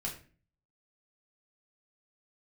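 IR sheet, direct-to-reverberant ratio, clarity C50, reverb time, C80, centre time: −2.5 dB, 9.0 dB, 0.40 s, 13.5 dB, 20 ms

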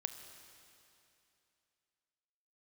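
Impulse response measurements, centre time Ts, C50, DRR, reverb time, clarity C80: 35 ms, 8.5 dB, 7.5 dB, 2.8 s, 9.0 dB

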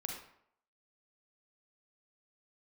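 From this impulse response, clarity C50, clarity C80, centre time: 3.0 dB, 7.0 dB, 37 ms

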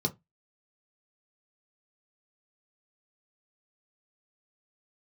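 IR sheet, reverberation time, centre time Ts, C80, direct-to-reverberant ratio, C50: 0.20 s, 6 ms, 32.0 dB, 2.0 dB, 22.0 dB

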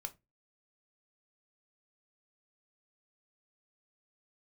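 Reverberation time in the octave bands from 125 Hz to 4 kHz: 0.35, 0.30, 0.25, 0.20, 0.20, 0.15 seconds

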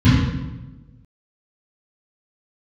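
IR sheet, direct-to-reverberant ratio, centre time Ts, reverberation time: −14.0 dB, 81 ms, 1.2 s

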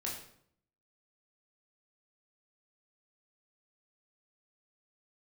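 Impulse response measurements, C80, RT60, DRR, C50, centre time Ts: 8.0 dB, 0.65 s, −3.5 dB, 4.5 dB, 39 ms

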